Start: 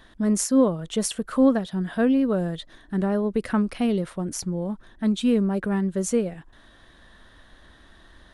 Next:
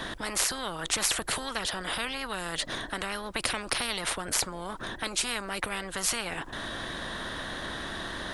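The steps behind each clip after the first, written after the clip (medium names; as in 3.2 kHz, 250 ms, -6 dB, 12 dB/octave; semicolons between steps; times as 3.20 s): in parallel at -2 dB: compression, threshold -29 dBFS, peak gain reduction 15 dB; on the sum: spectrum-flattening compressor 10:1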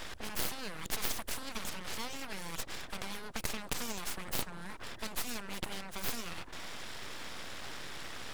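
full-wave rectifier; trim -5 dB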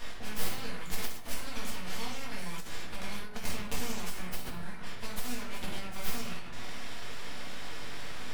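simulated room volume 160 m³, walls mixed, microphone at 1.8 m; endings held to a fixed fall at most 100 dB/s; trim -5.5 dB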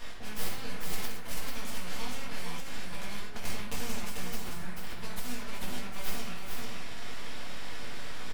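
delay 441 ms -4 dB; trim -1.5 dB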